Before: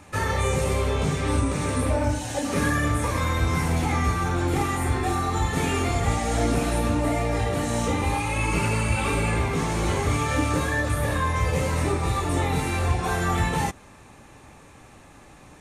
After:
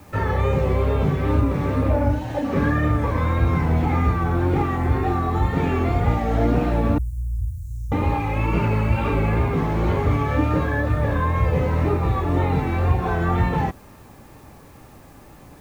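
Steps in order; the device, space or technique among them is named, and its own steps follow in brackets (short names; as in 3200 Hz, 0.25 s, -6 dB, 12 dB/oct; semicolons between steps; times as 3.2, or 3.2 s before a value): cassette deck with a dirty head (tape spacing loss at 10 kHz 36 dB; wow and flutter; white noise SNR 37 dB); 6.98–7.92 inverse Chebyshev band-stop 270–2500 Hz, stop band 60 dB; gain +5 dB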